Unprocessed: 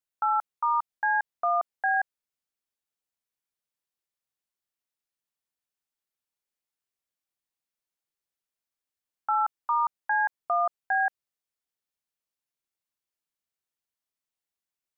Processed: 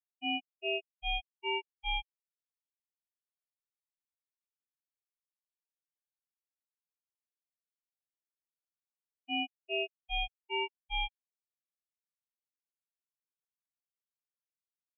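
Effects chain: ring modulator 1.6 kHz; spectral contrast expander 4:1; trim -4.5 dB

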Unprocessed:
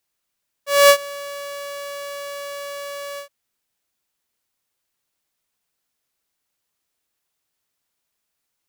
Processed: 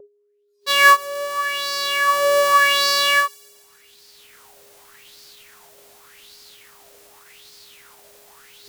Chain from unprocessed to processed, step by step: recorder AGC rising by 11 dB/s; formant shift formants -6 st; whistle 410 Hz -41 dBFS; in parallel at -2 dB: compression, threshold -26 dBFS, peak gain reduction 17.5 dB; on the sum: vibrato 0.98 Hz 11 cents; on a send: feedback echo behind a high-pass 140 ms, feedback 67%, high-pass 5 kHz, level -17 dB; on the sum: spectral noise reduction 18 dB; sweeping bell 0.86 Hz 540–4700 Hz +15 dB; trim -8 dB

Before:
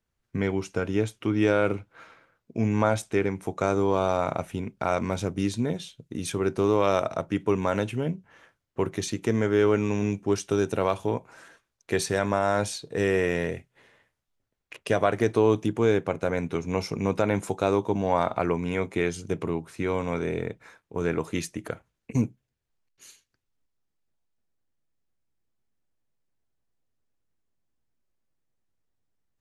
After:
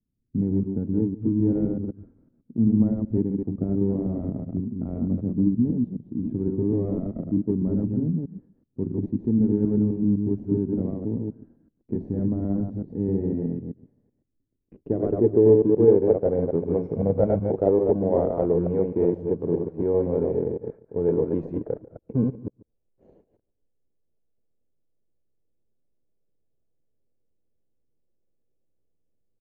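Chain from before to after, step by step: chunks repeated in reverse 127 ms, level -2.5 dB; 16.95–17.52 s: comb 1.4 ms, depth 64%; in parallel at -4.5 dB: sample-and-hold 34×; on the sum: delay 144 ms -20.5 dB; low-pass sweep 250 Hz -> 500 Hz, 13.93–16.13 s; trim -4.5 dB

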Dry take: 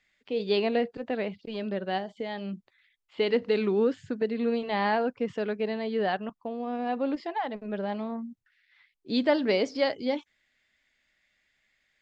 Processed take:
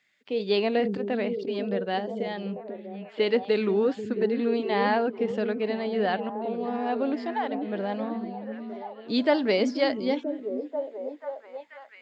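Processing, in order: high-pass 130 Hz; on a send: repeats whose band climbs or falls 487 ms, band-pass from 250 Hz, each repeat 0.7 oct, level -4 dB; 0.76–1.47 s: on the sum: decay stretcher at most 56 dB/s; trim +1.5 dB

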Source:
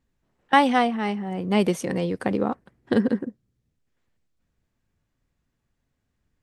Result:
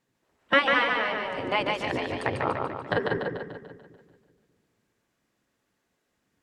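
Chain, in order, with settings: spectral gate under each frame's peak -10 dB weak; low-pass that closes with the level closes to 2.8 kHz, closed at -30.5 dBFS; two-band feedback delay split 360 Hz, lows 197 ms, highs 146 ms, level -3.5 dB; trim +4.5 dB

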